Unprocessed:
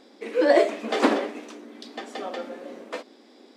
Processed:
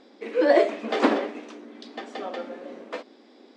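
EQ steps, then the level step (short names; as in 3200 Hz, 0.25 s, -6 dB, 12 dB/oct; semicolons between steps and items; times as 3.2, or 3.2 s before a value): air absorption 81 m; 0.0 dB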